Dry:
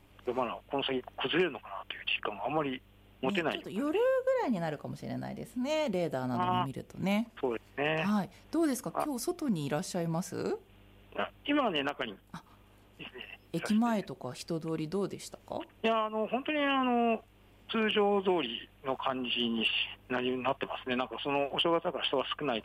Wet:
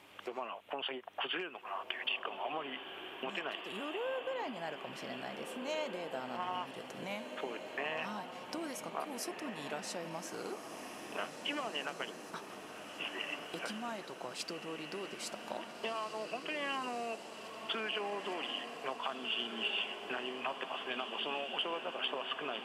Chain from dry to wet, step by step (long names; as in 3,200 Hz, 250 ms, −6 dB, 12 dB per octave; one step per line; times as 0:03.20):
downward compressor 4 to 1, threshold −44 dBFS, peak gain reduction 17 dB
meter weighting curve A
feedback delay with all-pass diffusion 1,758 ms, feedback 63%, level −7 dB
level +7 dB